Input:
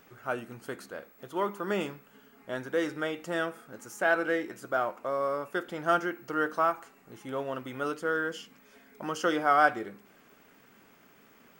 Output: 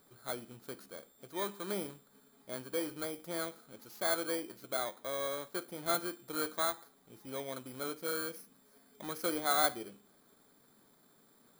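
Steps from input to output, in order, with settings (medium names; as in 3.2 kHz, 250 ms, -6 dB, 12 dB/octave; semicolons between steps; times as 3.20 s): bit-reversed sample order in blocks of 16 samples; trim -7 dB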